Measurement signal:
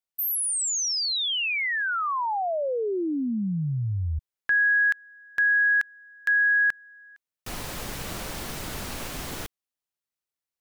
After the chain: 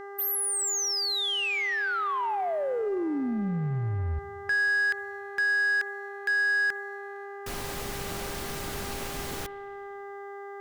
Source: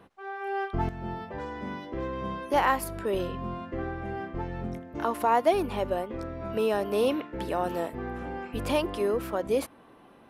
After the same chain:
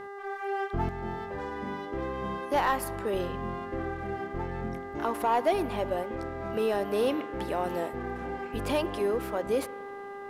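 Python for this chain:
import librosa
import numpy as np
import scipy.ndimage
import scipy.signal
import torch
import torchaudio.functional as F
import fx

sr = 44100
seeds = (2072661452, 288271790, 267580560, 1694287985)

y = fx.dmg_buzz(x, sr, base_hz=400.0, harmonics=5, level_db=-40.0, tilt_db=-5, odd_only=False)
y = fx.rev_spring(y, sr, rt60_s=2.1, pass_ms=(45, 51, 58), chirp_ms=40, drr_db=18.0)
y = fx.leveller(y, sr, passes=1)
y = y * 10.0 ** (-5.0 / 20.0)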